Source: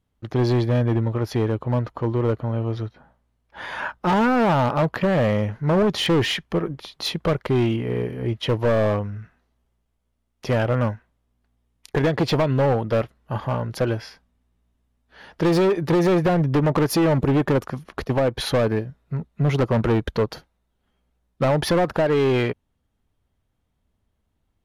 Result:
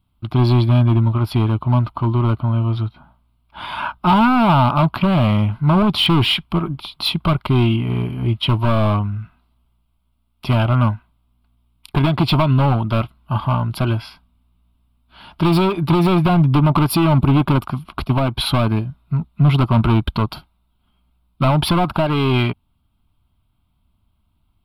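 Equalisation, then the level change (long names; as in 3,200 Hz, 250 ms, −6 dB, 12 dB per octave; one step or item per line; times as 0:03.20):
notch filter 800 Hz, Q 12
phaser with its sweep stopped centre 1,800 Hz, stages 6
+8.5 dB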